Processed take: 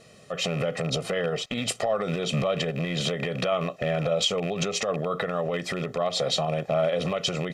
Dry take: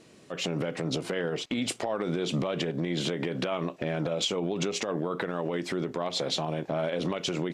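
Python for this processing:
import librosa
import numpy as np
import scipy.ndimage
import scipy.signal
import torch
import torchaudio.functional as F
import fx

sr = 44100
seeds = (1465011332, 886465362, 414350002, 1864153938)

y = fx.rattle_buzz(x, sr, strikes_db=-31.0, level_db=-30.0)
y = y + 0.78 * np.pad(y, (int(1.6 * sr / 1000.0), 0))[:len(y)]
y = y * 10.0 ** (2.0 / 20.0)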